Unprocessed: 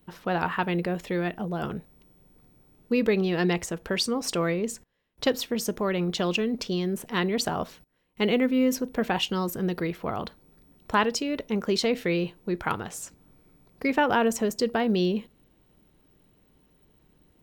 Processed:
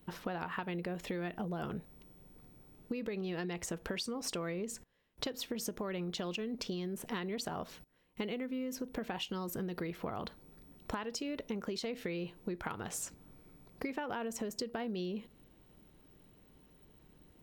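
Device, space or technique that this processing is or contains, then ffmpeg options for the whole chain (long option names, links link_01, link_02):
serial compression, leveller first: -af "acompressor=threshold=-28dB:ratio=2.5,acompressor=threshold=-35dB:ratio=10"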